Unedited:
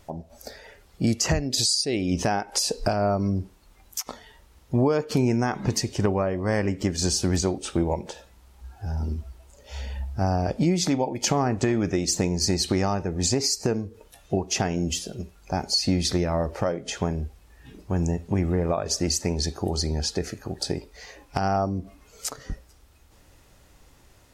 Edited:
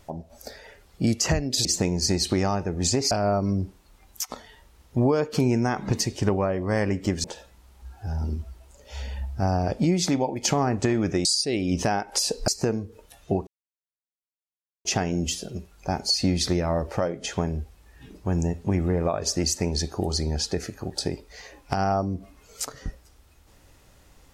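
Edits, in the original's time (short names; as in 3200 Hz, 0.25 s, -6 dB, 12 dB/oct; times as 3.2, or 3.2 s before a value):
1.65–2.88 swap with 12.04–13.5
7.01–8.03 cut
14.49 insert silence 1.38 s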